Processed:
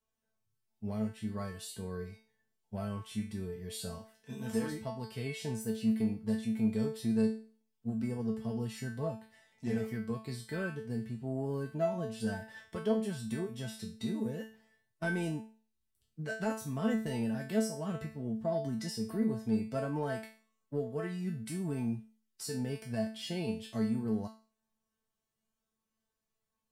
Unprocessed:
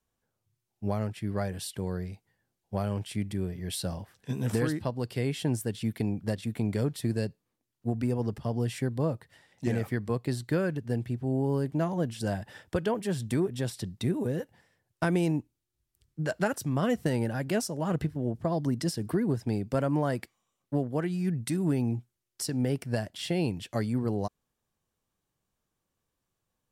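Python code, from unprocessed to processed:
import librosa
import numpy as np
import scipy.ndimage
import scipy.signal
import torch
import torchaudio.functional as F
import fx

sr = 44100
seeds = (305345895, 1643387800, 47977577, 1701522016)

p1 = fx.low_shelf(x, sr, hz=120.0, db=-10.5, at=(3.99, 4.72))
p2 = fx.comb_fb(p1, sr, f0_hz=220.0, decay_s=0.39, harmonics='all', damping=0.0, mix_pct=90)
p3 = fx.hpss(p2, sr, part='harmonic', gain_db=7)
p4 = 10.0 ** (-30.5 / 20.0) * np.tanh(p3 / 10.0 ** (-30.5 / 20.0))
y = p3 + F.gain(torch.from_numpy(p4), -11.5).numpy()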